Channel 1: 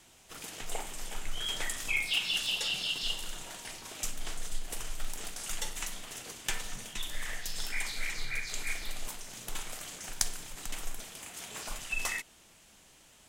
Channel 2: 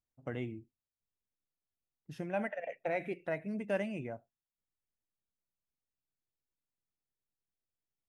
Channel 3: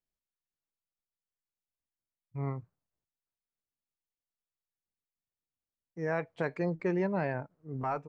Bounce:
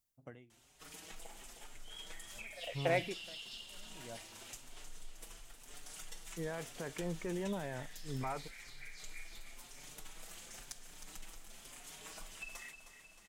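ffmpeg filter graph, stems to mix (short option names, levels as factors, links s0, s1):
-filter_complex "[0:a]acompressor=threshold=0.0126:ratio=5,asplit=2[s0][s1];[s1]adelay=5.3,afreqshift=0.99[s2];[s0][s2]amix=inputs=2:normalize=1,adelay=500,volume=0.562,asplit=2[s3][s4];[s4]volume=0.316[s5];[1:a]highshelf=f=4900:g=11.5,aeval=exprs='val(0)*pow(10,-39*(0.5-0.5*cos(2*PI*0.69*n/s))/20)':c=same,volume=1.33[s6];[2:a]alimiter=level_in=1.68:limit=0.0631:level=0:latency=1,volume=0.596,adelay=400,volume=0.75[s7];[s5]aecho=0:1:312|624|936|1248|1560|1872|2184|2496|2808:1|0.57|0.325|0.185|0.106|0.0602|0.0343|0.0195|0.0111[s8];[s3][s6][s7][s8]amix=inputs=4:normalize=0"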